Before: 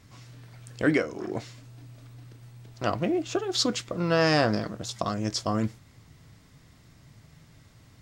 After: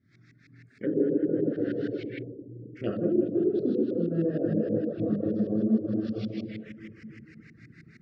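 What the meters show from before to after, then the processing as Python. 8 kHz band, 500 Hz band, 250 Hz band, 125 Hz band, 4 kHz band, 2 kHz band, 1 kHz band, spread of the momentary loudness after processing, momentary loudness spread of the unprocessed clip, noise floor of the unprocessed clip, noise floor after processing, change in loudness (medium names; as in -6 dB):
under -35 dB, +1.0 dB, +4.0 dB, -1.5 dB, under -20 dB, -15.5 dB, under -15 dB, 17 LU, 13 LU, -56 dBFS, -59 dBFS, -1.0 dB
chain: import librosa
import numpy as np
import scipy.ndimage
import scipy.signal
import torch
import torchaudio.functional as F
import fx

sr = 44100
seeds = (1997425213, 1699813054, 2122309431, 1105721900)

y = fx.reverse_delay(x, sr, ms=165, wet_db=-4)
y = fx.rev_plate(y, sr, seeds[0], rt60_s=3.1, hf_ratio=0.95, predelay_ms=0, drr_db=-5.0)
y = fx.filter_lfo_lowpass(y, sr, shape='saw_up', hz=6.4, low_hz=600.0, high_hz=2300.0, q=0.82)
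y = fx.weighting(y, sr, curve='D')
y = fx.env_lowpass_down(y, sr, base_hz=760.0, full_db=-19.5)
y = fx.low_shelf(y, sr, hz=63.0, db=-11.5)
y = fx.dereverb_blind(y, sr, rt60_s=0.6)
y = fx.rider(y, sr, range_db=5, speed_s=0.5)
y = scipy.signal.sosfilt(scipy.signal.cheby1(2, 1.0, [450.0, 1900.0], 'bandstop', fs=sr, output='sos'), y)
y = fx.env_phaser(y, sr, low_hz=470.0, high_hz=2200.0, full_db=-26.5)
y = fx.spec_erase(y, sr, start_s=2.22, length_s=0.54, low_hz=980.0, high_hz=12000.0)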